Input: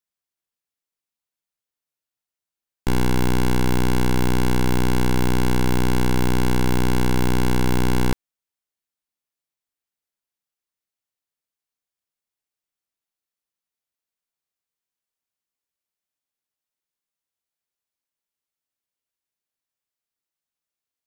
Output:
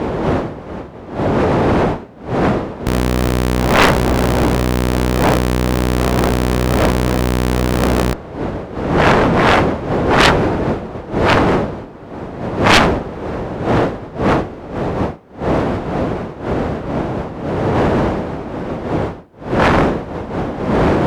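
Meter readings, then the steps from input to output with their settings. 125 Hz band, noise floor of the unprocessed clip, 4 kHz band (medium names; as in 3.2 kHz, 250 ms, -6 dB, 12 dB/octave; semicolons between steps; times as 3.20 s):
+8.5 dB, under -85 dBFS, +12.0 dB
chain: wind noise 520 Hz -23 dBFS; high-pass 46 Hz 12 dB/octave; Chebyshev shaper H 7 -11 dB, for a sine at 1 dBFS; sine folder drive 10 dB, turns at 1.5 dBFS; trim -3 dB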